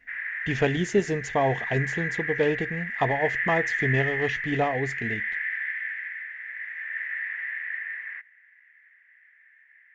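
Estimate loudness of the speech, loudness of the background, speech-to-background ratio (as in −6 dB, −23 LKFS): −27.5 LKFS, −29.5 LKFS, 2.0 dB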